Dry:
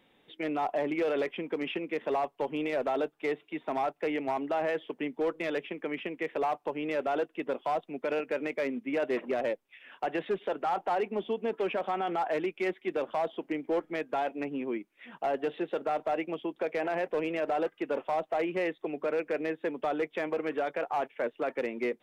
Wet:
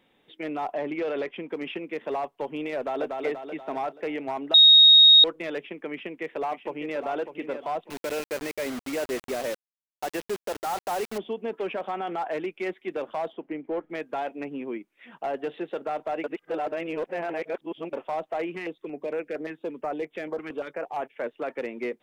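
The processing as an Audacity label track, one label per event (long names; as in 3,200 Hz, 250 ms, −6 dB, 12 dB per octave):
0.740000	1.490000	low-pass filter 5,600 Hz
2.760000	3.160000	delay throw 240 ms, feedback 50%, level −3 dB
4.540000	5.240000	beep over 3,750 Hz −10 dBFS
5.910000	7.060000	delay throw 600 ms, feedback 30%, level −9 dB
7.900000	11.180000	bit-depth reduction 6 bits, dither none
13.330000	13.900000	high-frequency loss of the air 330 metres
16.240000	17.930000	reverse
18.550000	21.140000	notch on a step sequencer 8.7 Hz 540–4,700 Hz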